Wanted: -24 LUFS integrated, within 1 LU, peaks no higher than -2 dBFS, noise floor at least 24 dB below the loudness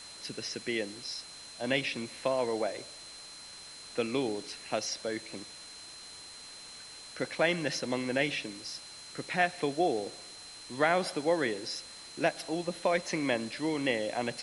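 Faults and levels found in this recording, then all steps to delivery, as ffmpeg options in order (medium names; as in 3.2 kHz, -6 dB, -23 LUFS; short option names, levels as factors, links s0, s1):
steady tone 4.1 kHz; tone level -48 dBFS; noise floor -48 dBFS; noise floor target -57 dBFS; loudness -32.5 LUFS; peak level -12.5 dBFS; loudness target -24.0 LUFS
-> -af "bandreject=f=4100:w=30"
-af "afftdn=nr=9:nf=-48"
-af "volume=2.66"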